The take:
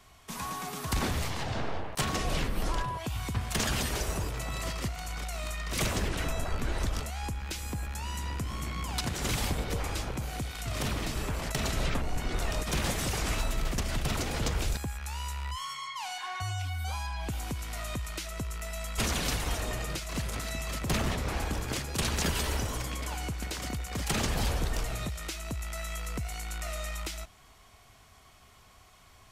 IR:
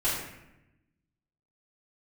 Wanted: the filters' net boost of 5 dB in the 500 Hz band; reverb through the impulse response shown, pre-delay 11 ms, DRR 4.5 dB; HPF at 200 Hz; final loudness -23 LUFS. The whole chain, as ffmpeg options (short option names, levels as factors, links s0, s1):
-filter_complex "[0:a]highpass=200,equalizer=f=500:t=o:g=6.5,asplit=2[s0][s1];[1:a]atrim=start_sample=2205,adelay=11[s2];[s1][s2]afir=irnorm=-1:irlink=0,volume=0.188[s3];[s0][s3]amix=inputs=2:normalize=0,volume=3.16"